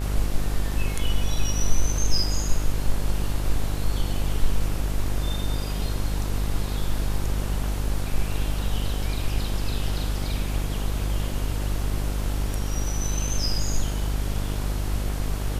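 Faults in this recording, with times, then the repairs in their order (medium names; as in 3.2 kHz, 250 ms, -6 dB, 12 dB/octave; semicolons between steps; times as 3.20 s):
buzz 50 Hz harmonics 33 -27 dBFS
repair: de-hum 50 Hz, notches 33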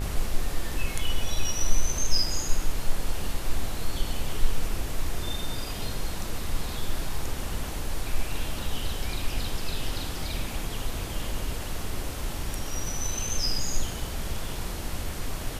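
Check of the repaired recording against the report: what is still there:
nothing left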